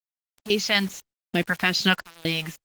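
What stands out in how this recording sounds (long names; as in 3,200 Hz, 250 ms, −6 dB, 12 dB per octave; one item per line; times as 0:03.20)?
sample-and-hold tremolo 4 Hz, depth 95%
phaser sweep stages 2, 2.4 Hz, lowest notch 340–1,100 Hz
a quantiser's noise floor 8 bits, dither none
Opus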